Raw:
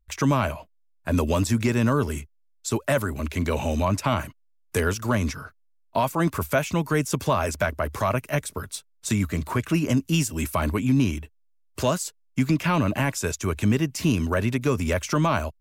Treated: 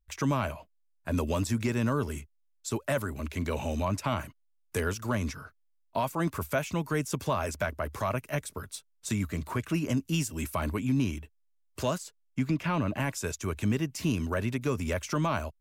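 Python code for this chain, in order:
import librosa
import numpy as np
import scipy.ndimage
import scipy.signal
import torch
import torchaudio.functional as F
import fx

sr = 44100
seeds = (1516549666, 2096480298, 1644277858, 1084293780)

y = fx.high_shelf(x, sr, hz=5100.0, db=-8.5, at=(11.98, 13.0))
y = y * 10.0 ** (-6.5 / 20.0)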